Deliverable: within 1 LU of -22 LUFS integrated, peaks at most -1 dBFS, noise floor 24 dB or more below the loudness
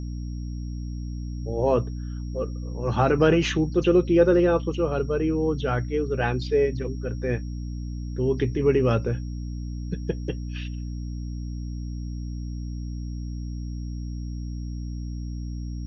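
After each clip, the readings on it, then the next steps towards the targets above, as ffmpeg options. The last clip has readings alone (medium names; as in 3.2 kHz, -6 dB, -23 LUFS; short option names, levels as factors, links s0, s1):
hum 60 Hz; highest harmonic 300 Hz; hum level -29 dBFS; steady tone 5.6 kHz; tone level -54 dBFS; loudness -26.5 LUFS; peak level -7.0 dBFS; loudness target -22.0 LUFS
-> -af "bandreject=f=60:t=h:w=6,bandreject=f=120:t=h:w=6,bandreject=f=180:t=h:w=6,bandreject=f=240:t=h:w=6,bandreject=f=300:t=h:w=6"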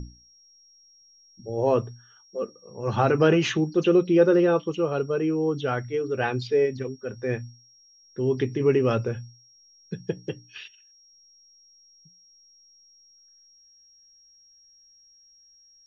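hum not found; steady tone 5.6 kHz; tone level -54 dBFS
-> -af "bandreject=f=5600:w=30"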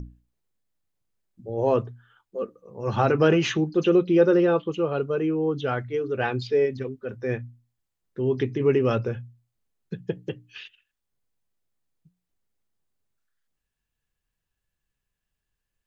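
steady tone not found; loudness -24.5 LUFS; peak level -8.0 dBFS; loudness target -22.0 LUFS
-> -af "volume=1.33"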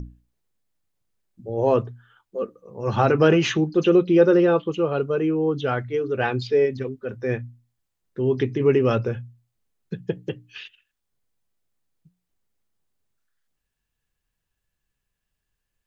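loudness -22.0 LUFS; peak level -5.5 dBFS; noise floor -81 dBFS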